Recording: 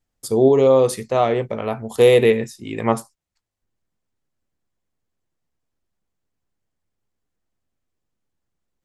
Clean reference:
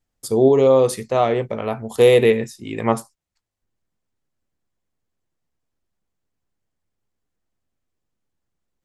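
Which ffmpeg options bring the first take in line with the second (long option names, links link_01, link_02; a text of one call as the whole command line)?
ffmpeg -i in.wav -af anull out.wav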